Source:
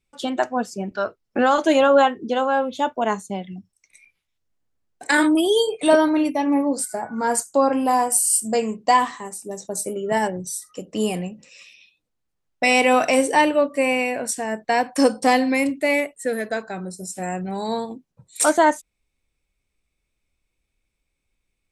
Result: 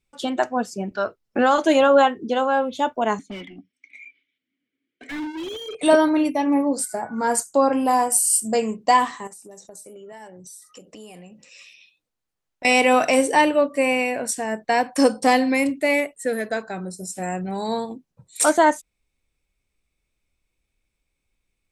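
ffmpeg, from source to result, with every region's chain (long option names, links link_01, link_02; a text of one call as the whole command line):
ffmpeg -i in.wav -filter_complex "[0:a]asettb=1/sr,asplit=3[link_01][link_02][link_03];[link_01]atrim=end=3.194[link_04];[link_02]atrim=start=3.19:end=5.75,asetpts=PTS-STARTPTS,afade=type=in:duration=0.004:curve=qsin,afade=type=out:start_time=2.556:duration=0.004:curve=qsin,asplit=3[link_05][link_06][link_07];[link_05]bandpass=frequency=270:width_type=q:width=8,volume=0dB[link_08];[link_06]bandpass=frequency=2290:width_type=q:width=8,volume=-6dB[link_09];[link_07]bandpass=frequency=3010:width_type=q:width=8,volume=-9dB[link_10];[link_08][link_09][link_10]amix=inputs=3:normalize=0,asplit=2[link_11][link_12];[link_12]highpass=frequency=720:poles=1,volume=36dB,asoftclip=type=tanh:threshold=-19.5dB[link_13];[link_11][link_13]amix=inputs=2:normalize=0,lowpass=frequency=1500:poles=1,volume=-6dB,flanger=delay=0.8:depth=2:regen=-46:speed=1.5:shape=triangular[link_14];[link_03]atrim=start=5.746[link_15];[link_04][link_14]acrossfade=duration=0.004:curve1=hsin:curve2=qsin[link_16];[link_16][link_15]acrossfade=duration=0.004:curve1=qsin:curve2=hsin,asettb=1/sr,asplit=3[link_17][link_18][link_19];[link_17]atrim=end=9.274[link_20];[link_18]atrim=start=9.27:end=12.65,asetpts=PTS-STARTPTS,afade=type=in:duration=0.004:curve=qsin,afade=type=out:start_time=3.376:duration=0.004:curve=qsin,lowshelf=frequency=320:gain=-7,acompressor=threshold=-40dB:ratio=5:attack=3.2:release=140:knee=1:detection=peak[link_21];[link_19]atrim=start=12.646[link_22];[link_20][link_21]acrossfade=duration=0.004:curve1=hsin:curve2=qsin[link_23];[link_23][link_22]acrossfade=duration=0.004:curve1=qsin:curve2=hsin" out.wav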